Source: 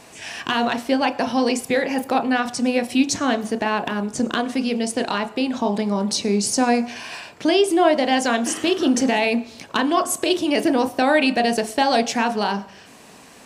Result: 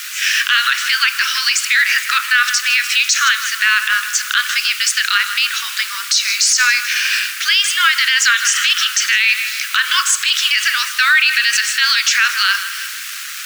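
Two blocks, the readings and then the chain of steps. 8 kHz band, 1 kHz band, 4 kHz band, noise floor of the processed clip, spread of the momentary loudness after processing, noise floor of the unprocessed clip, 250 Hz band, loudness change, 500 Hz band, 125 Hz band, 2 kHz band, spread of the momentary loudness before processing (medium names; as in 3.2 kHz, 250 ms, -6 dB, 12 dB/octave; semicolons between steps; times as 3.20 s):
+12.5 dB, 0.0 dB, +13.5 dB, -27 dBFS, 5 LU, -46 dBFS, under -40 dB, +7.5 dB, under -40 dB, under -40 dB, +14.5 dB, 7 LU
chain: Chebyshev low-pass 7 kHz, order 3; on a send: filtered feedback delay 156 ms, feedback 56%, low-pass 4.9 kHz, level -14 dB; on the sum: added noise pink -43 dBFS; in parallel at -11.5 dB: word length cut 6-bit, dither none; on the sum: steep high-pass 1.3 kHz 72 dB/octave; loudness maximiser +19 dB; trim -2.5 dB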